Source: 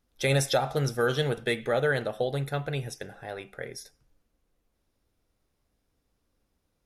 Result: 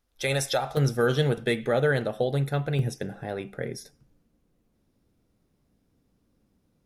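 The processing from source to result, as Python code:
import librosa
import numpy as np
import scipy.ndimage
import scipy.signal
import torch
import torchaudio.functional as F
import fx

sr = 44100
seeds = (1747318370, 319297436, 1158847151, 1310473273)

y = fx.peak_eq(x, sr, hz=190.0, db=fx.steps((0.0, -5.0), (0.77, 6.0), (2.79, 13.0)), octaves=2.2)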